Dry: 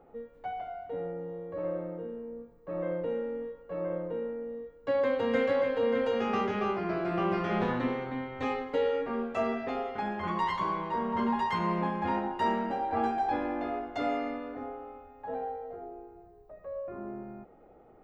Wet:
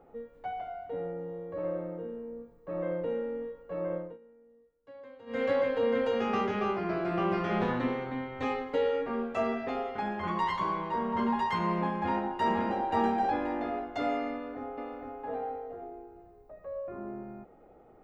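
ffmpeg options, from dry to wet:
-filter_complex "[0:a]asplit=2[a][b];[b]afade=t=in:st=11.94:d=0.01,afade=t=out:st=12.77:d=0.01,aecho=0:1:530|1060|1590:0.630957|0.126191|0.0252383[c];[a][c]amix=inputs=2:normalize=0,asplit=2[d][e];[e]afade=t=in:st=14.31:d=0.01,afade=t=out:st=15.14:d=0.01,aecho=0:1:460|920|1380|1840:0.630957|0.189287|0.0567862|0.0170358[f];[d][f]amix=inputs=2:normalize=0,asplit=3[g][h][i];[g]atrim=end=4.18,asetpts=PTS-STARTPTS,afade=t=out:st=3.95:d=0.23:silence=0.0841395[j];[h]atrim=start=4.18:end=5.26,asetpts=PTS-STARTPTS,volume=-21.5dB[k];[i]atrim=start=5.26,asetpts=PTS-STARTPTS,afade=t=in:d=0.23:silence=0.0841395[l];[j][k][l]concat=n=3:v=0:a=1"

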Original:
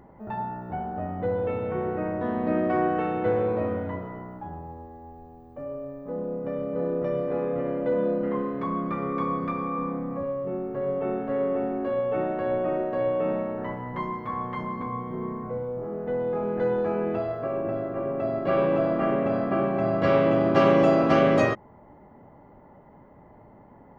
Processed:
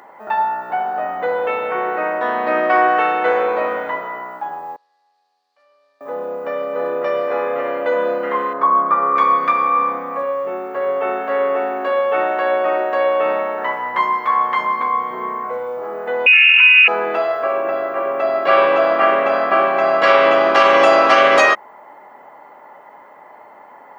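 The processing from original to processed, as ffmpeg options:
-filter_complex "[0:a]asettb=1/sr,asplit=3[a][b][c];[a]atrim=end=4.764[d];[b]atrim=start=4.76:end=6.01,asetpts=PTS-STARTPTS,afade=t=in:d=0.004:c=qsin,afade=t=out:st=1.246:d=0.004:c=qsin,bandpass=f=4.5k:t=q:w=5.4[e];[c]atrim=start=6.006[f];[d][e]acrossfade=d=0.004:c1=hsin:c2=qsin[g];[g][f]acrossfade=d=0.004:c1=qsin:c2=hsin,asettb=1/sr,asplit=3[h][i][j];[h]atrim=end=8.534[k];[i]atrim=start=8.53:end=9.16,asetpts=PTS-STARTPTS,afade=t=in:d=0.004:c=qsin,afade=t=out:st=0.626:d=0.004:c=qsin,highshelf=f=1.7k:t=q:w=1.5:g=-10.5[l];[j]atrim=start=9.156[m];[k][l]acrossfade=d=0.004:c1=hsin:c2=qsin[n];[n][m]acrossfade=d=0.004:c1=qsin:c2=hsin,asettb=1/sr,asplit=3[o][p][q];[o]atrim=end=16.264[r];[p]atrim=start=16.26:end=16.88,asetpts=PTS-STARTPTS,afade=t=in:d=0.004:c=qsin,afade=t=out:st=0.616:d=0.004:c=qsin,lowpass=f=2.6k:t=q:w=0.5098,lowpass=f=2.6k:t=q:w=0.6013,lowpass=f=2.6k:t=q:w=0.9,lowpass=f=2.6k:t=q:w=2.563,afreqshift=-3000[s];[q]atrim=start=16.876[t];[r][s]acrossfade=d=0.004:c1=hsin:c2=qsin[u];[u][t]acrossfade=d=0.004:c1=qsin:c2=hsin,highpass=940,alimiter=level_in=19dB:limit=-1dB:release=50:level=0:latency=1,volume=-1dB"

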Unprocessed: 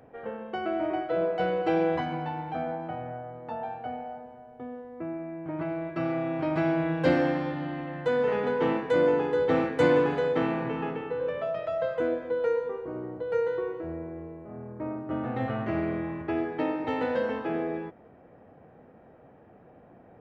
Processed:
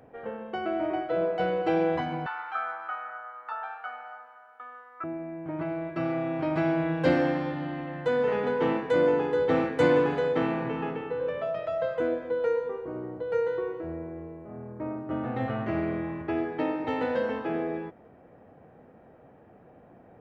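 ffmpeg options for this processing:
-filter_complex "[0:a]asettb=1/sr,asplit=3[a][b][c];[a]atrim=end=2.264[d];[b]atrim=start=2.26:end=5.04,asetpts=PTS-STARTPTS,afade=t=in:d=0.004:c=qsin,afade=t=out:st=2.776:d=0.004:c=qsin,highpass=f=1.3k:t=q:w=11[e];[c]atrim=start=5.036[f];[d][e]acrossfade=d=0.004:c1=hsin:c2=qsin[g];[g][f]acrossfade=d=0.004:c1=qsin:c2=hsin"

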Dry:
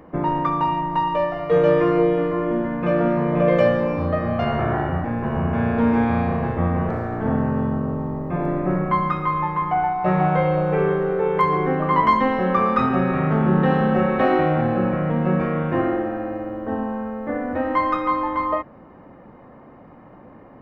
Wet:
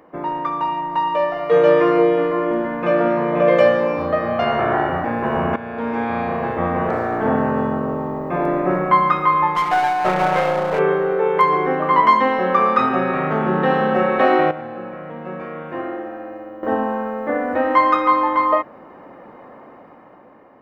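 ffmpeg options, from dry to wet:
-filter_complex "[0:a]asettb=1/sr,asplit=3[a][b][c];[a]atrim=end=9.554[d];[b]atrim=start=9.55:end=10.79,asetpts=PTS-STARTPTS,afade=t=in:d=0.004:c=qsin,afade=t=out:st=1.236:d=0.004:c=qsin,aeval=exprs='clip(val(0),-1,0.0398)':c=same[e];[c]atrim=start=10.786[f];[d][e]acrossfade=d=0.004:c1=hsin:c2=qsin[g];[g][f]acrossfade=d=0.004:c1=qsin:c2=hsin,asplit=4[h][i][j][k];[h]atrim=end=5.56,asetpts=PTS-STARTPTS,afade=t=out:st=5.556:d=0.004:c=hsin:silence=0.177828[l];[i]atrim=start=5.56:end=14.512,asetpts=PTS-STARTPTS,afade=t=in:d=1.53:silence=0.177828[m];[j]atrim=start=14.508:end=16.632,asetpts=PTS-STARTPTS,volume=-12dB[n];[k]atrim=start=16.628[o];[l][m]concat=n=2:v=0:a=1[p];[p][n]acrossfade=d=0.004:c1=hsin:c2=hsin[q];[q][o]acrossfade=d=0.004:c1=hsin:c2=hsin,lowshelf=f=140:g=-9.5,dynaudnorm=f=250:g=9:m=11.5dB,bass=f=250:g=-8,treble=f=4k:g=1,volume=-1dB"

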